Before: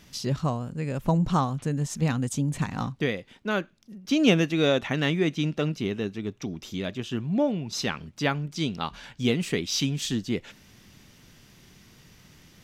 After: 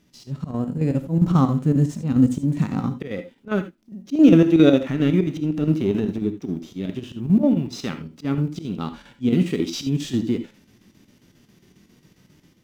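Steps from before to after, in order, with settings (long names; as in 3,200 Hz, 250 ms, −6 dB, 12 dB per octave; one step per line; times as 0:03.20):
mu-law and A-law mismatch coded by A
dynamic equaliser 1,300 Hz, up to +6 dB, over −52 dBFS, Q 5.7
harmonic and percussive parts rebalanced percussive −14 dB
parametric band 300 Hz +10.5 dB 1.7 octaves
volume swells 160 ms
automatic gain control gain up to 7 dB
0:04.89–0:06.18: transient designer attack −7 dB, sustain +6 dB
square-wave tremolo 7.4 Hz, depth 60%, duty 75%
reverb whose tail is shaped and stops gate 100 ms rising, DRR 10 dB
level −1 dB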